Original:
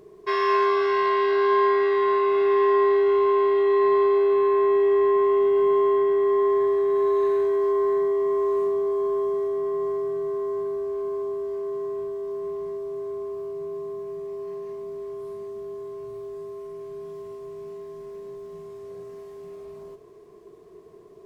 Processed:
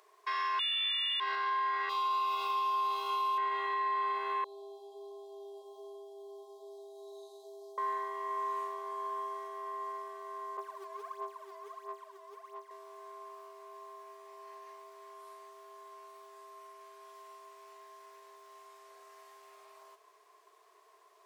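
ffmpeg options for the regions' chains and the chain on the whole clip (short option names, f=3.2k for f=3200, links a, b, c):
-filter_complex "[0:a]asettb=1/sr,asplit=3[a][b][c];[a]atrim=end=0.594[d];[b]atrim=start=0.59:end=1.2,asetpts=PTS-STARTPTS,afade=t=in:d=0.004:c=qsin,afade=t=out:st=0.606:d=0.004:c=qsin,lowpass=f=3.3k:t=q:w=0.5098,lowpass=f=3.3k:t=q:w=0.6013,lowpass=f=3.3k:t=q:w=0.9,lowpass=f=3.3k:t=q:w=2.563,afreqshift=-3900,acontrast=55[e];[c]atrim=start=1.196[f];[d][e]acrossfade=d=0.004:c1=hsin:c2=qsin[g];[g][f]acrossfade=d=0.004:c1=qsin:c2=hsin,asettb=1/sr,asplit=3[h][i][j];[h]atrim=end=1.894[k];[i]atrim=start=1.89:end=3.38,asetpts=PTS-STARTPTS,afade=t=in:d=0.004:c=qsin,afade=t=out:st=1.486:d=0.004:c=qsin,asuperstop=centerf=1800:order=4:qfactor=1.4,aemphasis=mode=production:type=riaa[l];[j]atrim=start=3.376[m];[k][l]acrossfade=d=0.004:c1=hsin:c2=qsin[n];[n][m]acrossfade=d=0.004:c1=qsin:c2=hsin,asettb=1/sr,asplit=3[o][p][q];[o]atrim=end=4.444[r];[p]atrim=start=4.44:end=7.78,asetpts=PTS-STARTPTS,afade=t=in:d=0.004:c=qsin,afade=t=out:st=3.336:d=0.004:c=qsin,asuperstop=centerf=1700:order=12:qfactor=0.57,flanger=delay=1.4:depth=2.5:regen=-67:speed=1.2:shape=sinusoidal[s];[q]atrim=start=7.776[t];[r][s]acrossfade=d=0.004:c1=hsin:c2=qsin[u];[u][t]acrossfade=d=0.004:c1=qsin:c2=hsin,asettb=1/sr,asplit=3[v][w][x];[v]atrim=end=10.574[y];[w]atrim=start=10.57:end=12.71,asetpts=PTS-STARTPTS,afade=t=in:d=0.004:c=qsin,afade=t=out:st=2.136:d=0.004:c=qsin,agate=range=-33dB:threshold=-26dB:ratio=3:release=100:detection=peak,aphaser=in_gain=1:out_gain=1:delay=3:decay=0.73:speed=1.5:type=sinusoidal[z];[x]atrim=start=12.706[aa];[y][z]acrossfade=d=0.004:c1=hsin:c2=qsin[ab];[ab][aa]acrossfade=d=0.004:c1=qsin:c2=hsin,highpass=f=810:w=0.5412,highpass=f=810:w=1.3066,alimiter=level_in=2dB:limit=-24dB:level=0:latency=1:release=84,volume=-2dB"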